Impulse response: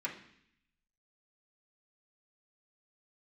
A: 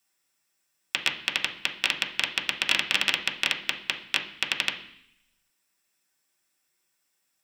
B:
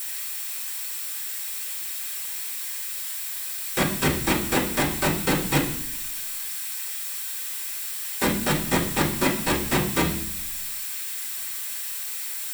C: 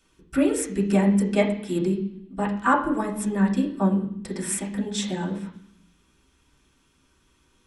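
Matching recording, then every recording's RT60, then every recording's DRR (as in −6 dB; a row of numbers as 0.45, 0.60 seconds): C; 0.65, 0.65, 0.65 seconds; −0.5, −14.0, −6.0 decibels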